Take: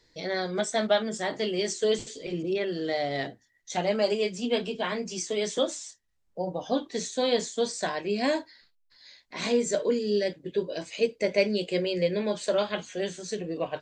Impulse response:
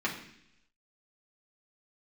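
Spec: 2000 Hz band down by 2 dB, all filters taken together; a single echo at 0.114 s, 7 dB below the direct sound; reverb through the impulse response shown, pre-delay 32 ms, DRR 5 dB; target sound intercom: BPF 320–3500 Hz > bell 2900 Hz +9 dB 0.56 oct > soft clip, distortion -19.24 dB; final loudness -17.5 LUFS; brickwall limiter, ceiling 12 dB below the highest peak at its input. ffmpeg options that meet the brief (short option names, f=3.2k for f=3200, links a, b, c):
-filter_complex "[0:a]equalizer=f=2k:t=o:g=-5.5,alimiter=limit=-22.5dB:level=0:latency=1,aecho=1:1:114:0.447,asplit=2[a][b];[1:a]atrim=start_sample=2205,adelay=32[c];[b][c]afir=irnorm=-1:irlink=0,volume=-13dB[d];[a][d]amix=inputs=2:normalize=0,highpass=320,lowpass=3.5k,equalizer=f=2.9k:t=o:w=0.56:g=9,asoftclip=threshold=-23.5dB,volume=16dB"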